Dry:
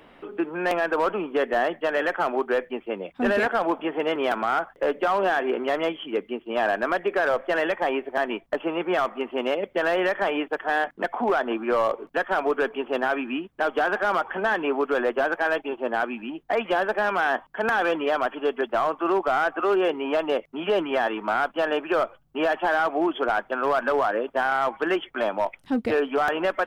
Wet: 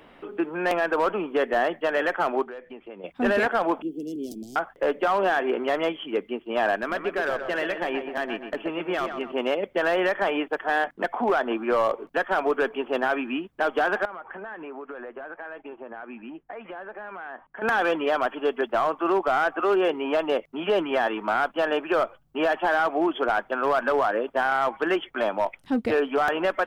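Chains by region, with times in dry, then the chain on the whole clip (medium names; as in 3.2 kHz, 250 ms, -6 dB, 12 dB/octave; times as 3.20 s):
2.42–3.04 s: compression 4:1, threshold -38 dBFS + distance through air 57 m
3.82–4.56 s: Chebyshev band-stop 320–5300 Hz, order 3 + treble shelf 3.9 kHz +7 dB
6.76–9.32 s: peaking EQ 770 Hz -6 dB 2.1 oct + filtered feedback delay 127 ms, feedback 46%, low-pass 2.9 kHz, level -7 dB
14.05–17.62 s: compression 12:1, threshold -29 dBFS + four-pole ladder low-pass 2.8 kHz, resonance 20%
whole clip: none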